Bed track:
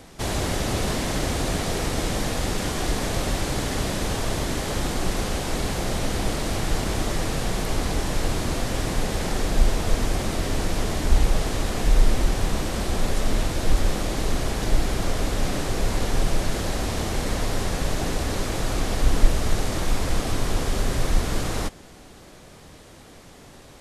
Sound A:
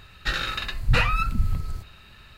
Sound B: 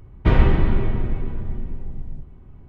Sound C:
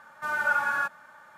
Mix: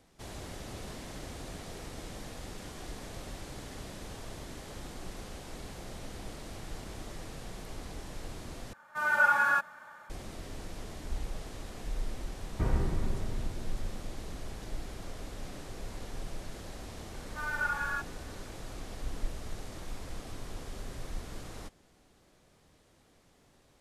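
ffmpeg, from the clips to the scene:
ffmpeg -i bed.wav -i cue0.wav -i cue1.wav -i cue2.wav -filter_complex "[3:a]asplit=2[link_01][link_02];[0:a]volume=-18dB[link_03];[link_01]dynaudnorm=framelen=190:gausssize=3:maxgain=7dB[link_04];[2:a]lowpass=1800[link_05];[link_02]equalizer=frequency=230:width_type=o:width=2.8:gain=-11.5[link_06];[link_03]asplit=2[link_07][link_08];[link_07]atrim=end=8.734[link_09];[link_04]atrim=end=1.37,asetpts=PTS-STARTPTS,volume=-6dB[link_10];[link_08]atrim=start=10.096[link_11];[link_05]atrim=end=2.68,asetpts=PTS-STARTPTS,volume=-14dB,afade=type=in:duration=0.004:curve=hsin,afade=type=out:start_time=2.676:duration=0.004:curve=hsin,adelay=12340[link_12];[link_06]atrim=end=1.37,asetpts=PTS-STARTPTS,volume=-5.5dB,afade=type=in:duration=0.004:curve=hsin,afade=type=out:start_time=1.366:duration=0.004:curve=hsin,adelay=17140[link_13];[link_09][link_10]acrossfade=duration=0.004:curve1=hsin:curve2=hsin[link_14];[link_14][link_11]acrossfade=duration=0.004:curve1=hsin:curve2=hsin[link_15];[link_15][link_12][link_13]amix=inputs=3:normalize=0" out.wav

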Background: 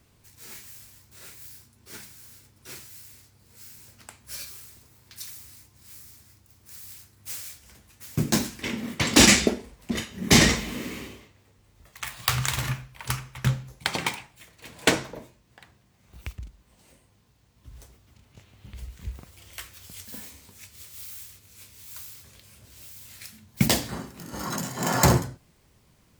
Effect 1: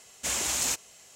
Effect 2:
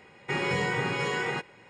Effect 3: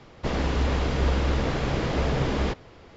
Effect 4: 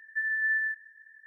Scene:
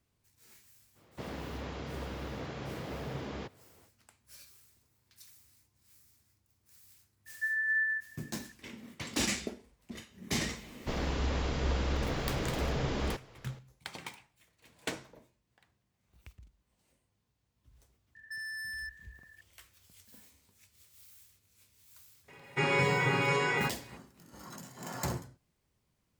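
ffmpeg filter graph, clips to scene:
ffmpeg -i bed.wav -i cue0.wav -i cue1.wav -i cue2.wav -i cue3.wav -filter_complex "[3:a]asplit=2[link_01][link_02];[4:a]asplit=2[link_03][link_04];[0:a]volume=-16.5dB[link_05];[link_01]highpass=frequency=78:width=0.5412,highpass=frequency=78:width=1.3066[link_06];[link_02]highshelf=frequency=4200:gain=6[link_07];[link_04]volume=36dB,asoftclip=hard,volume=-36dB[link_08];[2:a]aecho=1:1:7.2:0.68[link_09];[link_06]atrim=end=2.96,asetpts=PTS-STARTPTS,volume=-13.5dB,afade=type=in:duration=0.05,afade=type=out:start_time=2.91:duration=0.05,adelay=940[link_10];[link_03]atrim=end=1.26,asetpts=PTS-STARTPTS,volume=-2.5dB,afade=type=in:duration=0.004:curve=hsin,afade=type=out:start_time=1.256:duration=0.004:curve=hsin,adelay=7260[link_11];[link_07]atrim=end=2.96,asetpts=PTS-STARTPTS,volume=-8dB,afade=type=in:duration=0.004:curve=hsin,afade=type=out:start_time=2.956:duration=0.004:curve=hsin,adelay=10630[link_12];[link_08]atrim=end=1.26,asetpts=PTS-STARTPTS,volume=-3.5dB,afade=type=in:duration=0.004:curve=hsin,afade=type=out:start_time=1.256:duration=0.004:curve=hsin,adelay=18150[link_13];[link_09]atrim=end=1.69,asetpts=PTS-STARTPTS,volume=-2dB,afade=type=in:duration=0.004:curve=hsin,afade=type=out:start_time=1.686:duration=0.004:curve=hsin,adelay=982548S[link_14];[link_05][link_10][link_11][link_12][link_13][link_14]amix=inputs=6:normalize=0" out.wav

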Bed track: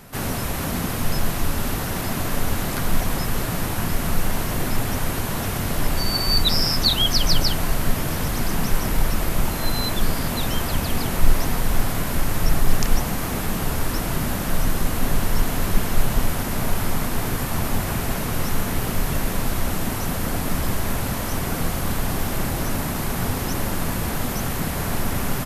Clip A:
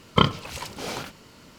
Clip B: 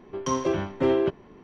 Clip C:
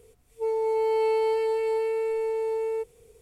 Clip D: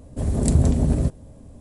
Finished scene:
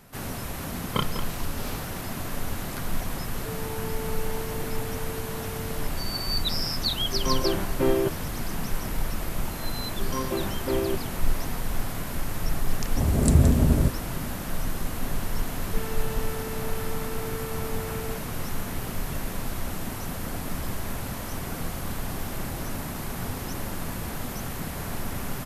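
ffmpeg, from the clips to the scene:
ffmpeg -i bed.wav -i cue0.wav -i cue1.wav -i cue2.wav -i cue3.wav -filter_complex "[3:a]asplit=2[link_01][link_02];[2:a]asplit=2[link_03][link_04];[0:a]volume=-8dB[link_05];[1:a]asplit=2[link_06][link_07];[link_07]adelay=198.3,volume=-10dB,highshelf=frequency=4000:gain=-4.46[link_08];[link_06][link_08]amix=inputs=2:normalize=0[link_09];[link_02]asoftclip=type=tanh:threshold=-35.5dB[link_10];[link_09]atrim=end=1.58,asetpts=PTS-STARTPTS,volume=-8.5dB,afade=type=in:duration=0.004:curve=hsin,afade=type=out:start_time=1.576:duration=0.004:curve=hsin,adelay=780[link_11];[link_01]atrim=end=3.21,asetpts=PTS-STARTPTS,volume=-12.5dB,afade=type=in:duration=0.004:curve=hsin,afade=type=out:start_time=3.206:duration=0.004:curve=hsin,adelay=3040[link_12];[link_03]atrim=end=1.43,asetpts=PTS-STARTPTS,volume=-1.5dB,afade=type=in:duration=0.004:curve=hsin,afade=type=out:start_time=1.426:duration=0.004:curve=hsin,adelay=6990[link_13];[link_04]atrim=end=1.43,asetpts=PTS-STARTPTS,volume=-5dB,afade=type=in:duration=0.004:curve=hsin,afade=type=out:start_time=1.426:duration=0.004:curve=hsin,adelay=434826S[link_14];[4:a]atrim=end=1.6,asetpts=PTS-STARTPTS,volume=-0.5dB,afade=type=in:duration=0.004:curve=hsin,afade=type=out:start_time=1.596:duration=0.004:curve=hsin,adelay=12800[link_15];[link_10]atrim=end=3.21,asetpts=PTS-STARTPTS,volume=-1dB,afade=type=in:duration=0.004:curve=hsin,afade=type=out:start_time=3.206:duration=0.004:curve=hsin,adelay=15340[link_16];[link_05][link_11][link_12][link_13][link_14][link_15][link_16]amix=inputs=7:normalize=0" out.wav

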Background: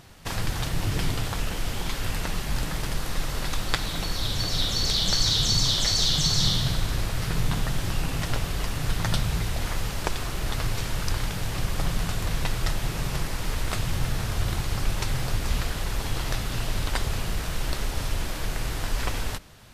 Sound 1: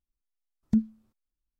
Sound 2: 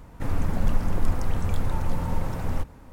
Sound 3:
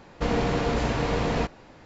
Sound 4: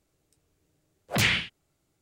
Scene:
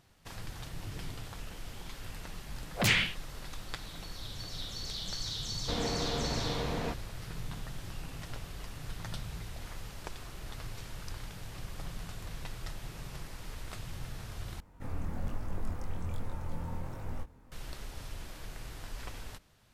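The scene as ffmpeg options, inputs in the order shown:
ffmpeg -i bed.wav -i cue0.wav -i cue1.wav -i cue2.wav -i cue3.wav -filter_complex "[0:a]volume=-15dB[link_01];[2:a]flanger=delay=20:depth=5:speed=1.2[link_02];[link_01]asplit=2[link_03][link_04];[link_03]atrim=end=14.604[link_05];[link_02]atrim=end=2.92,asetpts=PTS-STARTPTS,volume=-8.5dB[link_06];[link_04]atrim=start=17.516[link_07];[4:a]atrim=end=2.01,asetpts=PTS-STARTPTS,volume=-3dB,afade=type=in:duration=0.004:curve=hsin,afade=type=out:start_time=2.006:duration=0.004:curve=hsin,adelay=1660[link_08];[3:a]atrim=end=1.85,asetpts=PTS-STARTPTS,volume=-9.5dB,afade=type=in:duration=0.004:curve=hsin,afade=type=out:start_time=1.846:duration=0.004:curve=hsin,adelay=5470[link_09];[link_05][link_06]acrossfade=duration=0.004:curve1=hsin:curve2=hsin[link_10];[link_10][link_07]acrossfade=duration=0.004:curve1=hsin:curve2=hsin[link_11];[link_11][link_08][link_09]amix=inputs=3:normalize=0" out.wav

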